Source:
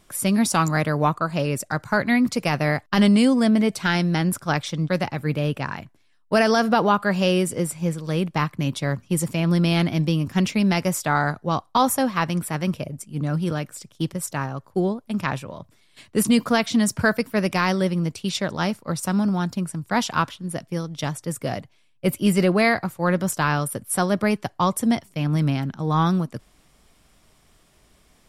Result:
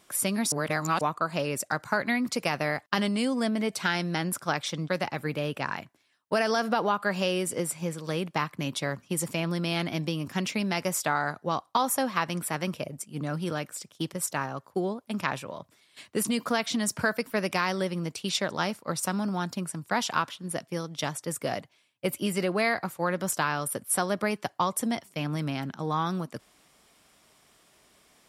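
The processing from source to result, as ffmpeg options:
-filter_complex "[0:a]asplit=3[a][b][c];[a]atrim=end=0.522[d];[b]atrim=start=0.518:end=1.012,asetpts=PTS-STARTPTS,areverse[e];[c]atrim=start=1.008[f];[d][e]acrossfade=d=0.004:c1=hsin:c2=hsin[g];[g][f]acrossfade=d=0.004:c1=hsin:c2=hsin,acompressor=threshold=-21dB:ratio=4,highpass=f=350:p=1"

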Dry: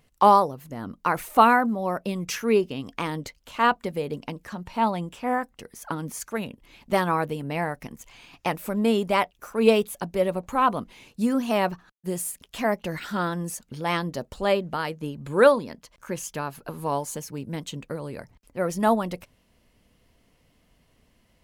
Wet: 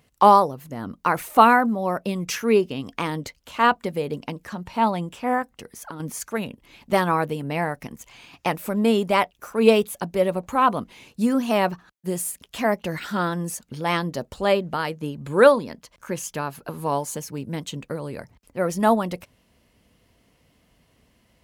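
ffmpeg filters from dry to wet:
-filter_complex "[0:a]asettb=1/sr,asplit=3[a][b][c];[a]atrim=end=5.424[d];[b]atrim=start=5.42:end=6,asetpts=PTS-STARTPTS,afade=t=in:d=0.004:c=qsin,afade=t=out:st=0.576:d=0.004:c=qsin,acompressor=threshold=-35dB:ratio=4:attack=3.2:release=140:knee=1:detection=peak[e];[c]atrim=start=5.996[f];[d][e]acrossfade=d=0.004:c1=hsin:c2=qsin[g];[g][f]acrossfade=d=0.004:c1=qsin:c2=hsin,highpass=46,volume=2.5dB"

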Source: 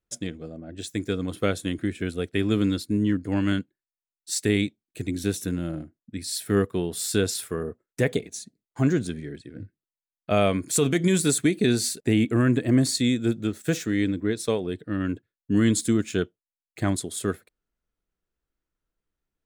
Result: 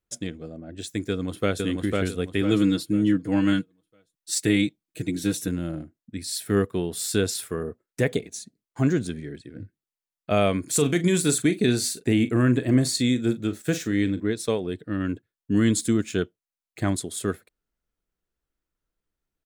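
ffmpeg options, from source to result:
-filter_complex "[0:a]asplit=2[a][b];[b]afade=t=in:st=1.09:d=0.01,afade=t=out:st=1.64:d=0.01,aecho=0:1:500|1000|1500|2000|2500:0.794328|0.278015|0.0973052|0.0340568|0.0119199[c];[a][c]amix=inputs=2:normalize=0,asettb=1/sr,asplit=3[d][e][f];[d]atrim=end=2.414[g];[e]atrim=start=2.41:end=5.48,asetpts=PTS-STARTPTS,afade=t=in:d=0.004:c=qsin,afade=t=out:st=3.066:d=0.004:c=qsin,aecho=1:1:6.3:0.7,atrim=end_sample=135387[h];[f]atrim=start=5.476[i];[g][h]acrossfade=d=0.004:c1=hsin:c2=qsin[j];[j][i]acrossfade=d=0.004:c1=qsin:c2=hsin,asettb=1/sr,asplit=3[k][l][m];[k]atrim=end=10.664[n];[l]atrim=start=10.66:end=14.25,asetpts=PTS-STARTPTS,afade=t=in:d=0.004:c=qsin,afade=t=out:st=3.586:d=0.004:c=qsin,asplit=2[o][p];[p]adelay=40,volume=-13dB[q];[o][q]amix=inputs=2:normalize=0,atrim=end_sample=158319[r];[m]atrim=start=14.246[s];[n][r]acrossfade=d=0.004:c1=hsin:c2=qsin[t];[t][s]acrossfade=d=0.004:c1=qsin:c2=hsin"

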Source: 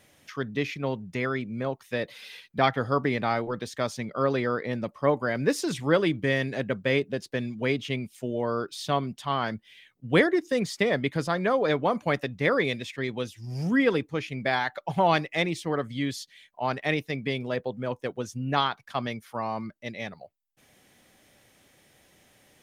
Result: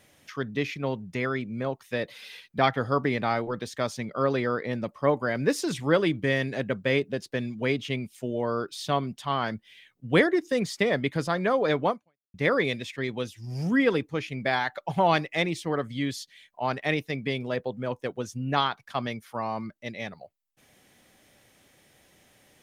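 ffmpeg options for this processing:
-filter_complex "[0:a]asplit=2[a][b];[a]atrim=end=12.34,asetpts=PTS-STARTPTS,afade=t=out:st=11.9:d=0.44:c=exp[c];[b]atrim=start=12.34,asetpts=PTS-STARTPTS,afade=t=in:d=0.004:c=hsin[d];[c][d]concat=n=2:v=0:a=1"

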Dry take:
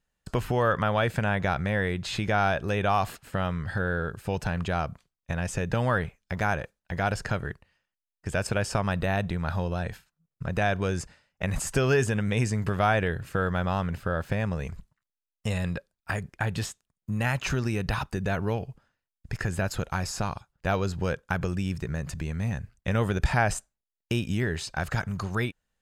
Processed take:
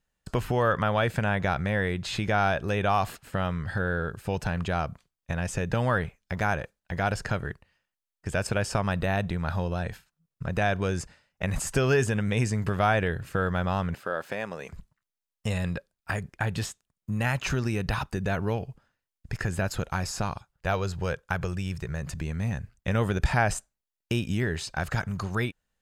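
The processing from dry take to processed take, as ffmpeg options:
-filter_complex "[0:a]asettb=1/sr,asplit=3[a][b][c];[a]atrim=end=13.944[d];[b]atrim=start=13.94:end=14.73,asetpts=PTS-STARTPTS,afade=t=in:d=0.004:c=qsin,afade=t=out:st=0.786:d=0.004:c=qsin,highpass=330[e];[c]atrim=start=14.726[f];[d][e]acrossfade=d=0.004:c1=hsin:c2=qsin[g];[g][f]acrossfade=d=0.004:c1=qsin:c2=hsin,asettb=1/sr,asplit=3[h][i][j];[h]atrim=end=20.514[k];[i]atrim=start=20.51:end=22.02,asetpts=PTS-STARTPTS,afade=t=in:d=0.004:c=qsin,afade=t=out:st=1.506:d=0.004:c=qsin,equalizer=f=250:t=o:w=0.77:g=-8.5[l];[j]atrim=start=22.016[m];[k][l]acrossfade=d=0.004:c1=hsin:c2=qsin[n];[n][m]acrossfade=d=0.004:c1=qsin:c2=hsin"

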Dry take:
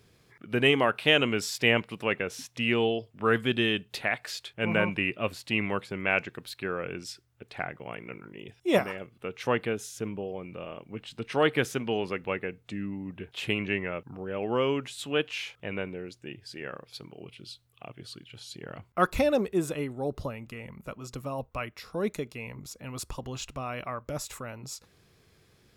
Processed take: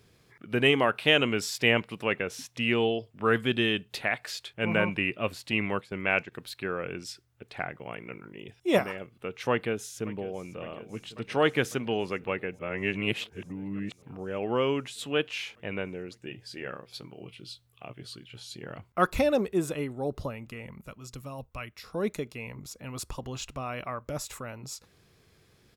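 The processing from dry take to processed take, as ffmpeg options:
-filter_complex "[0:a]asettb=1/sr,asplit=3[a][b][c];[a]atrim=end=5.524[d];[b]atrim=start=5.52:end=6.32,asetpts=PTS-STARTPTS,afade=t=in:d=0.004:c=qsin,afade=t=out:st=0.796:d=0.004:c=qsin,agate=range=-7dB:threshold=-38dB:ratio=16:release=100:detection=peak[e];[c]atrim=start=6.316[f];[d][e]acrossfade=d=0.004:c1=hsin:c2=qsin[g];[g][f]acrossfade=d=0.004:c1=qsin:c2=hsin,asplit=2[h][i];[i]afade=t=in:st=9.51:d=0.01,afade=t=out:st=10.54:d=0.01,aecho=0:1:550|1100|1650|2200|2750|3300|3850|4400|4950|5500|6050|6600:0.133352|0.106682|0.0853454|0.0682763|0.054621|0.0436968|0.0349575|0.027966|0.0223728|0.0178982|0.0143186|0.0114549[j];[h][j]amix=inputs=2:normalize=0,asettb=1/sr,asplit=3[k][l][m];[k]atrim=end=16.224[n];[l]atrim=start=16.22:end=18.74,asetpts=PTS-STARTPTS,afade=t=in:d=0.004:c=qsin,afade=t=out:st=2.516:d=0.004:c=qsin,asplit=2[o][p];[p]adelay=16,volume=-8dB[q];[o][q]amix=inputs=2:normalize=0,atrim=end_sample=111132[r];[m]atrim=start=18.736[s];[n][r]acrossfade=d=0.004:c1=hsin:c2=qsin[t];[t][s]acrossfade=d=0.004:c1=qsin:c2=hsin,asettb=1/sr,asplit=3[u][v][w];[u]atrim=end=20.824[x];[v]atrim=start=20.82:end=21.84,asetpts=PTS-STARTPTS,afade=t=in:d=0.004:c=qsin,afade=t=out:st=1.016:d=0.004:c=qsin,equalizer=f=580:w=0.34:g=-7.5[y];[w]atrim=start=21.836[z];[x][y]acrossfade=d=0.004:c1=hsin:c2=qsin[aa];[aa][z]acrossfade=d=0.004:c1=qsin:c2=hsin,asplit=3[ab][ac][ad];[ab]atrim=end=12.592[ae];[ac]atrim=start=12.588:end=14.022,asetpts=PTS-STARTPTS,areverse[af];[ad]atrim=start=14.018[ag];[ae][af]acrossfade=d=0.004:c1=hsin:c2=hsin[ah];[ah][ag]acrossfade=d=0.004:c1=hsin:c2=hsin"

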